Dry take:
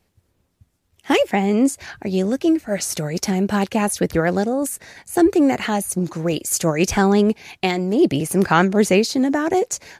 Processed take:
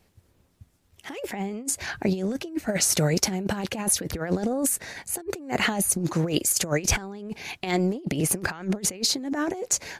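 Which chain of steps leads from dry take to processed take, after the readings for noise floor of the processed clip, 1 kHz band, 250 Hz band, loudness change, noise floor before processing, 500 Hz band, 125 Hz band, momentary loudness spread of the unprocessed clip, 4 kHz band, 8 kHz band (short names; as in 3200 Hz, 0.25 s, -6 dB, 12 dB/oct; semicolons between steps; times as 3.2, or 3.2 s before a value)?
-65 dBFS, -11.0 dB, -10.0 dB, -6.5 dB, -68 dBFS, -10.5 dB, -5.0 dB, 8 LU, -1.0 dB, +2.0 dB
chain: negative-ratio compressor -23 dBFS, ratio -0.5; gain -2.5 dB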